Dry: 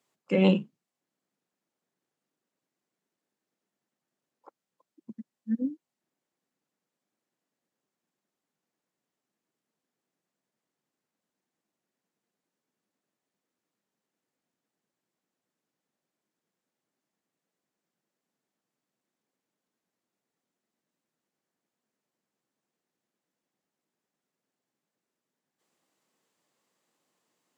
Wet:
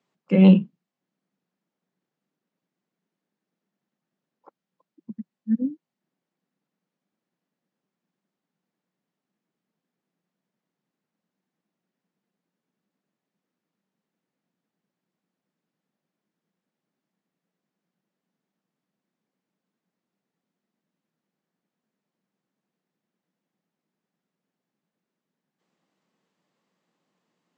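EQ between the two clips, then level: HPF 100 Hz; air absorption 110 m; bell 180 Hz +9.5 dB 0.66 oct; +1.5 dB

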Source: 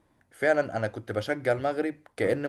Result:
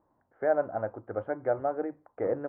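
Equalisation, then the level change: ladder low-pass 1300 Hz, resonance 30%; air absorption 450 m; low shelf 330 Hz -10 dB; +7.0 dB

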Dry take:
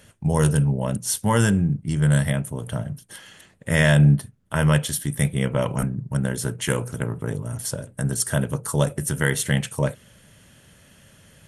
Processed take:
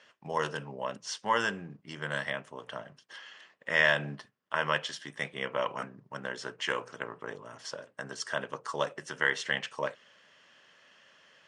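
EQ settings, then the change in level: air absorption 92 m; speaker cabinet 480–7200 Hz, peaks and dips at 1100 Hz +7 dB, 1800 Hz +5 dB, 2900 Hz +5 dB, 5100 Hz +6 dB; -5.5 dB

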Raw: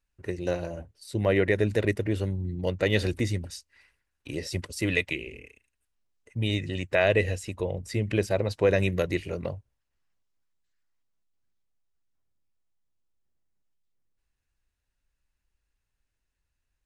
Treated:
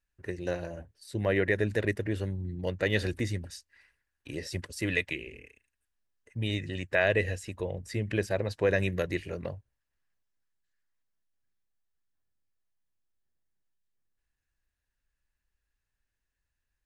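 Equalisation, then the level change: bell 1700 Hz +8 dB 0.26 oct; -4.0 dB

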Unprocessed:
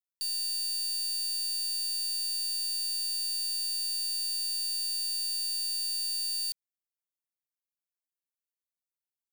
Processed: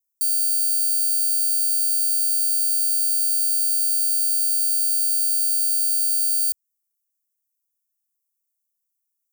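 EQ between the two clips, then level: inverse Chebyshev band-stop 110–2900 Hz, stop band 40 dB; tilt +4.5 dB/oct; -1.5 dB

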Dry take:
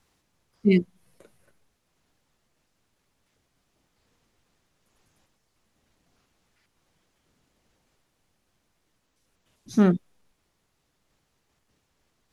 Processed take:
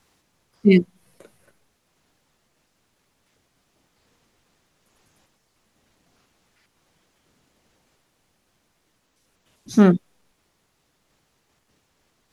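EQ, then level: low shelf 88 Hz -6.5 dB; +6.0 dB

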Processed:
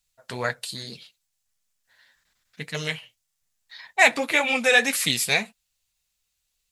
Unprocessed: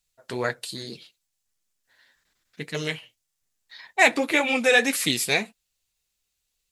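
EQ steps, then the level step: bell 340 Hz -9.5 dB 0.82 oct; +1.5 dB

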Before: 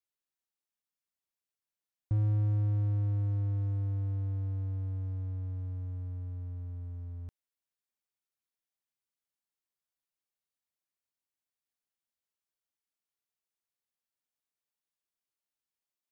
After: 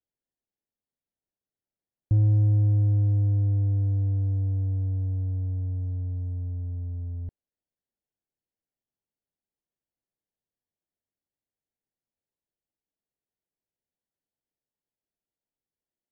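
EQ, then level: running mean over 36 samples; +8.0 dB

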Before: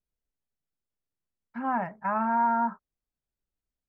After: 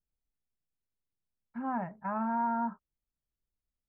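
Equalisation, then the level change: LPF 1800 Hz 6 dB/oct; low shelf 270 Hz +7.5 dB; -6.5 dB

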